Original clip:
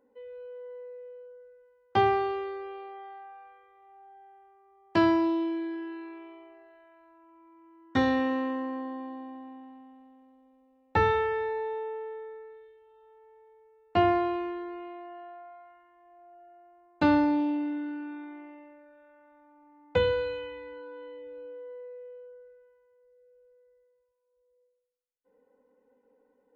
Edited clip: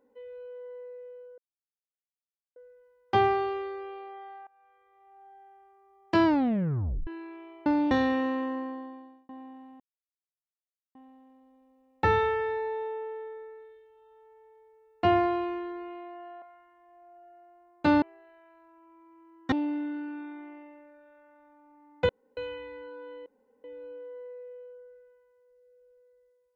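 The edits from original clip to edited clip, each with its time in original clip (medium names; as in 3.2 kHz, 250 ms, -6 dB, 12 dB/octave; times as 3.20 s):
1.38 s: insert silence 1.18 s
3.29–4.09 s: fade in, from -21.5 dB
5.07 s: tape stop 0.82 s
6.48–7.98 s: swap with 17.19–17.44 s
8.65–9.36 s: fade out
9.87 s: insert silence 1.15 s
15.34–15.59 s: delete
20.01–20.29 s: room tone
21.18 s: insert room tone 0.38 s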